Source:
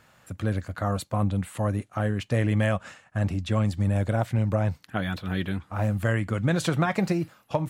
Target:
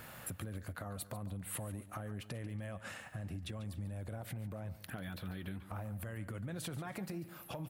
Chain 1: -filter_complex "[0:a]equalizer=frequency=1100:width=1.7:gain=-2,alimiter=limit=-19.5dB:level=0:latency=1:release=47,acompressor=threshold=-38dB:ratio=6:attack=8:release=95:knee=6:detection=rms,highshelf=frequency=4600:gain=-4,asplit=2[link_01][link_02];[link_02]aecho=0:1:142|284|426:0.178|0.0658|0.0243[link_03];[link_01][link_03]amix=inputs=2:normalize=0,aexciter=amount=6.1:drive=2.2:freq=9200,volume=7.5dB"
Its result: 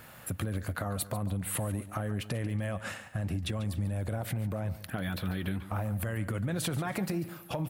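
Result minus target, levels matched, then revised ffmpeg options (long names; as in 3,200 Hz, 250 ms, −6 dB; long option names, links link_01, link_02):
downward compressor: peak gain reduction −10 dB
-filter_complex "[0:a]equalizer=frequency=1100:width=1.7:gain=-2,alimiter=limit=-19.5dB:level=0:latency=1:release=47,acompressor=threshold=-50dB:ratio=6:attack=8:release=95:knee=6:detection=rms,highshelf=frequency=4600:gain=-4,asplit=2[link_01][link_02];[link_02]aecho=0:1:142|284|426:0.178|0.0658|0.0243[link_03];[link_01][link_03]amix=inputs=2:normalize=0,aexciter=amount=6.1:drive=2.2:freq=9200,volume=7.5dB"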